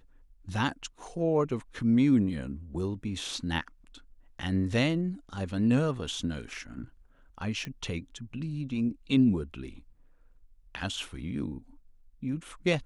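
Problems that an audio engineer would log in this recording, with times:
7.65 pop -23 dBFS

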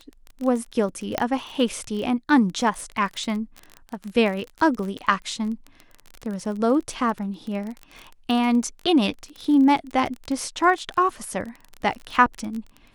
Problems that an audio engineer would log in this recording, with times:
crackle 29/s -28 dBFS
1.18 pop -7 dBFS

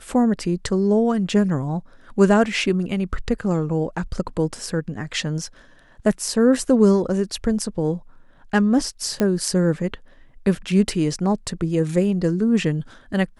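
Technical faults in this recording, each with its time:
9.2 pop -9 dBFS

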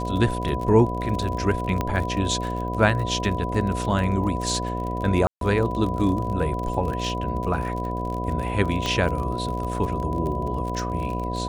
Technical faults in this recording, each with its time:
buzz 60 Hz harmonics 12 -29 dBFS
crackle 38/s -29 dBFS
tone 990 Hz -30 dBFS
1.81 pop -11 dBFS
5.27–5.41 gap 0.142 s
8.86 pop -12 dBFS

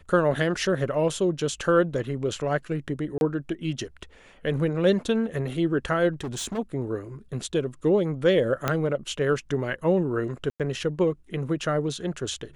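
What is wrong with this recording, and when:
3.18–3.21 gap 31 ms
6.12–6.59 clipped -28 dBFS
8.68 pop -9 dBFS
10.5–10.6 gap 97 ms

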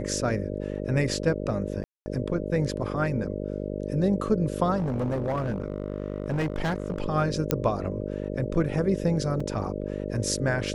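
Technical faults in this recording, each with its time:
buzz 50 Hz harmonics 12 -32 dBFS
1.84–2.06 gap 0.22 s
4.76–7.02 clipped -23 dBFS
7.51 pop -6 dBFS
9.4 gap 4.3 ms

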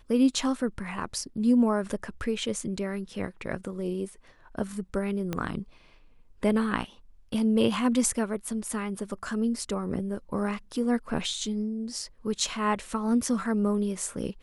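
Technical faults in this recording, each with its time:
5.33 pop -16 dBFS

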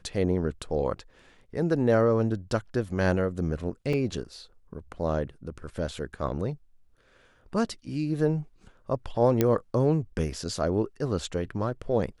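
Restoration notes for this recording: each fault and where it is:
3.93 gap 4.1 ms
9.41 pop -9 dBFS

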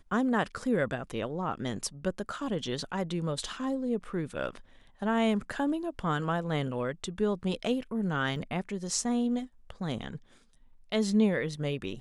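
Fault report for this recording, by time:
8.36 gap 3.5 ms

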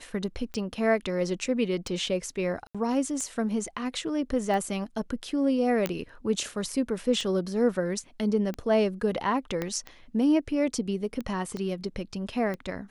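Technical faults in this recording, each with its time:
tick 45 rpm -22 dBFS
2.67–2.75 gap 76 ms
5.86 pop -12 dBFS
9.62 pop -16 dBFS
11.57 pop -23 dBFS

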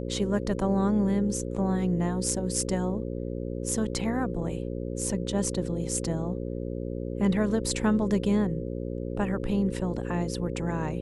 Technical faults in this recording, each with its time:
buzz 60 Hz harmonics 9 -33 dBFS

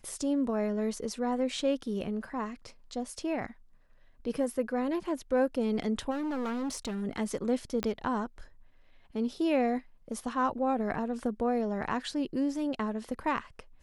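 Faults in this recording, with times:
6.1–7.03 clipped -30.5 dBFS
7.83 pop -17 dBFS

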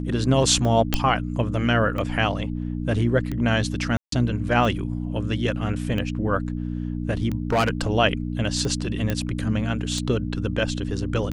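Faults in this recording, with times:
hum 60 Hz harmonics 5 -28 dBFS
tick 45 rpm -17 dBFS
0.94 pop -5 dBFS
3.97–4.12 gap 0.153 s
7.5–7.88 clipped -16 dBFS
9.1 pop -11 dBFS

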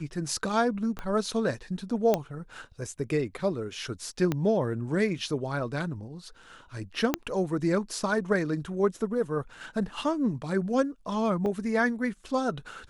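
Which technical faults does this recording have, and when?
0.99 pop -21 dBFS
2.14 pop -11 dBFS
4.32 pop -14 dBFS
7.14 pop -9 dBFS
11.46 gap 2.2 ms

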